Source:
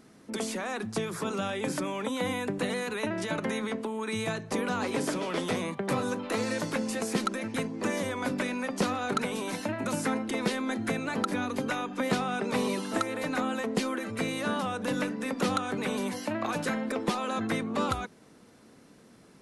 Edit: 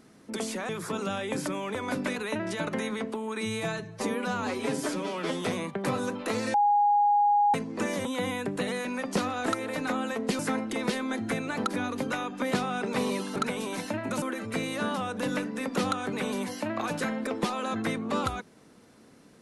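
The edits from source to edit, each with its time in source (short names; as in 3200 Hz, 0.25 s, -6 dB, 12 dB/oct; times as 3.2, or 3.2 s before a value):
0.69–1.01 cut
2.07–2.87 swap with 8.09–8.5
4.12–5.46 stretch 1.5×
6.58–7.58 bleep 823 Hz -19 dBFS
9.11–9.97 swap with 12.94–13.87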